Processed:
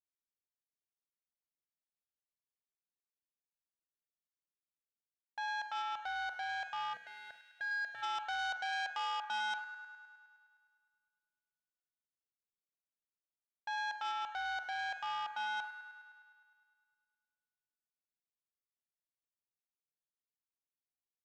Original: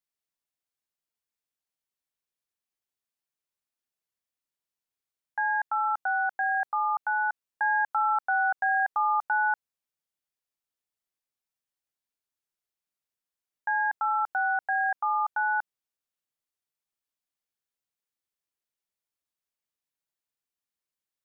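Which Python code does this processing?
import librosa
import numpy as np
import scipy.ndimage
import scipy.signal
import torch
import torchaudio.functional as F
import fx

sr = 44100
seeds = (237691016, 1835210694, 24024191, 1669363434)

p1 = fx.wiener(x, sr, points=41)
p2 = p1 + fx.echo_wet_highpass(p1, sr, ms=103, feedback_pct=70, hz=1600.0, wet_db=-7, dry=0)
p3 = fx.rev_schroeder(p2, sr, rt60_s=0.39, comb_ms=33, drr_db=10.5)
p4 = fx.spec_box(p3, sr, start_s=6.94, length_s=1.09, low_hz=730.0, high_hz=1500.0, gain_db=-19)
p5 = fx.transformer_sat(p4, sr, knee_hz=2300.0)
y = p5 * librosa.db_to_amplitude(-8.5)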